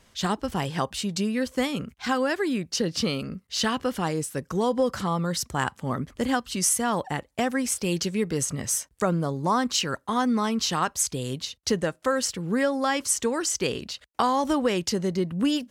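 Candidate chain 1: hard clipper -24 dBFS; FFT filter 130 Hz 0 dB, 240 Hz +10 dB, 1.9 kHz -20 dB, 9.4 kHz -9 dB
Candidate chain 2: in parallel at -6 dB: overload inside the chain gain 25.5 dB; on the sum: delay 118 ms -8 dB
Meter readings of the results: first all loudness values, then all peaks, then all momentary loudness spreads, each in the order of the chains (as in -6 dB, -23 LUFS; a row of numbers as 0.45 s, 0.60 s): -25.5 LUFS, -23.5 LUFS; -12.5 dBFS, -8.0 dBFS; 9 LU, 5 LU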